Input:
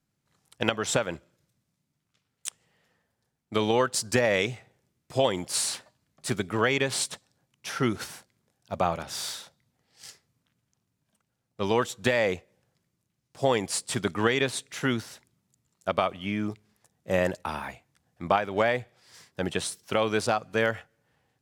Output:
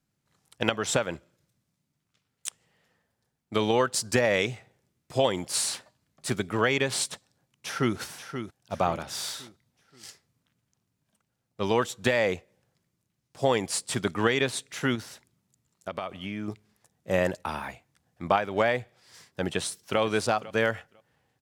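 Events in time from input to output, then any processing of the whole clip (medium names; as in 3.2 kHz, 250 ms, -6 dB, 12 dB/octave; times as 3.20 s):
7.11–7.97 s: echo throw 530 ms, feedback 40%, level -9 dB
14.95–16.48 s: compression 3:1, threshold -31 dBFS
19.45–20.00 s: echo throw 500 ms, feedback 15%, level -17.5 dB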